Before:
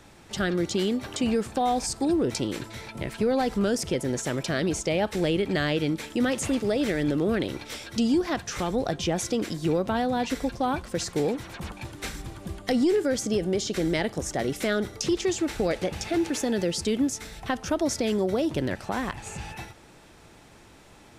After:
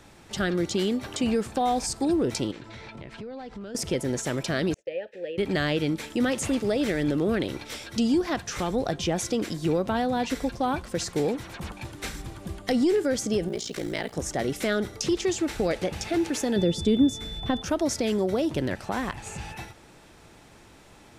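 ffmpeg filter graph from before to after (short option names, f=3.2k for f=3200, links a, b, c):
-filter_complex "[0:a]asettb=1/sr,asplit=3[a][b][c];[a]atrim=end=2.514[d];[b]atrim=start=2.51:end=3.75,asetpts=PTS-STARTPTS,afade=t=in:d=0.004:c=qsin,afade=t=out:st=1.236:d=0.004:c=qsin,lowpass=4.6k,acompressor=threshold=-38dB:ratio=4:attack=3.2:release=140:knee=1:detection=peak[e];[c]atrim=start=3.746[f];[d][e]acrossfade=d=0.004:c1=hsin:c2=qsin[g];[g][f]acrossfade=d=0.004:c1=qsin:c2=hsin,asettb=1/sr,asplit=3[h][i][j];[h]atrim=end=4.744[k];[i]atrim=start=4.74:end=5.38,asetpts=PTS-STARTPTS,afade=t=in:d=0.004:c=qsin,afade=t=out:st=0.636:d=0.004:c=qsin,asplit=3[l][m][n];[l]bandpass=f=530:t=q:w=8,volume=0dB[o];[m]bandpass=f=1.84k:t=q:w=8,volume=-6dB[p];[n]bandpass=f=2.48k:t=q:w=8,volume=-9dB[q];[o][p][q]amix=inputs=3:normalize=0,agate=range=-33dB:threshold=-46dB:ratio=3:release=100:detection=peak,bandreject=f=640:w=17[r];[j]atrim=start=5.376[s];[k][r]acrossfade=d=0.004:c1=hsin:c2=qsin[t];[t][s]acrossfade=d=0.004:c1=qsin:c2=hsin,asettb=1/sr,asplit=3[u][v][w];[u]atrim=end=13.484[x];[v]atrim=start=13.48:end=14.13,asetpts=PTS-STARTPTS,afade=t=in:d=0.004:c=qsin,afade=t=out:st=0.646:d=0.004:c=qsin,lowshelf=f=410:g=-5.5,acrusher=bits=8:mix=0:aa=0.5,aeval=exprs='val(0)*sin(2*PI*29*n/s)':c=same[y];[w]atrim=start=14.126[z];[x][y]acrossfade=d=0.004:c1=hsin:c2=qsin[aa];[aa][z]acrossfade=d=0.004:c1=qsin:c2=hsin,asettb=1/sr,asplit=3[ab][ac][ad];[ab]atrim=end=16.564[ae];[ac]atrim=start=16.56:end=17.62,asetpts=PTS-STARTPTS,afade=t=in:d=0.004:c=qsin,afade=t=out:st=1.056:d=0.004:c=qsin,tiltshelf=f=650:g=7,aeval=exprs='val(0)+0.0141*sin(2*PI*3500*n/s)':c=same[af];[ad]atrim=start=17.616[ag];[ae][af]acrossfade=d=0.004:c1=hsin:c2=qsin[ah];[ah][ag]acrossfade=d=0.004:c1=qsin:c2=hsin"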